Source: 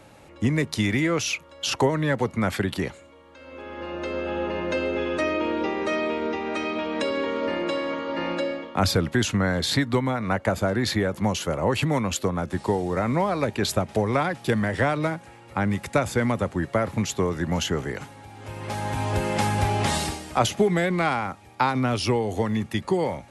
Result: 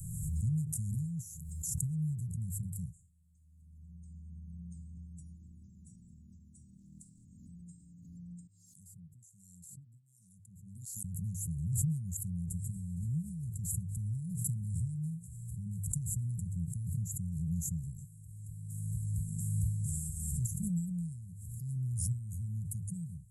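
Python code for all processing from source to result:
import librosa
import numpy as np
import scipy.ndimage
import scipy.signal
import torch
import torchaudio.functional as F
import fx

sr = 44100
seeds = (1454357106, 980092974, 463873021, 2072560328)

y = fx.chain(x, sr, fx.steep_highpass(hz=190.0, slope=36),
    fx.doppler_dist(depth_ms=0.13), at=(6.76, 7.25))
y = fx.chain(y, sr, fx.high_shelf(hz=8200.0, db=11.0),
    fx.filter_lfo_bandpass(shape='sine', hz=1.3, low_hz=520.0, high_hz=5200.0, q=2.6), at=(8.47, 11.04))
y = scipy.signal.sosfilt(scipy.signal.cheby1(5, 1.0, [170.0, 7500.0], 'bandstop', fs=sr, output='sos'), y)
y = fx.hum_notches(y, sr, base_hz=50, count=2)
y = fx.pre_swell(y, sr, db_per_s=30.0)
y = y * librosa.db_to_amplitude(-5.5)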